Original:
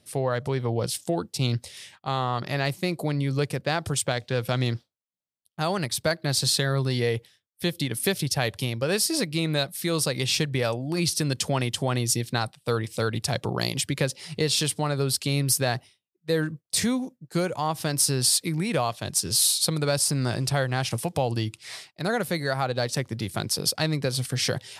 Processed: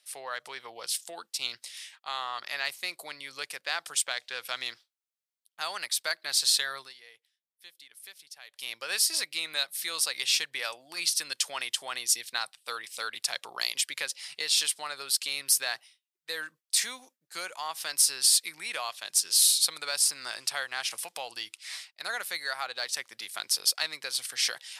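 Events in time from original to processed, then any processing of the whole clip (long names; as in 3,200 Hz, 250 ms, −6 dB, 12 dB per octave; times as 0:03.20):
0:06.76–0:08.71: duck −18.5 dB, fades 0.18 s
whole clip: high-pass filter 1,400 Hz 12 dB per octave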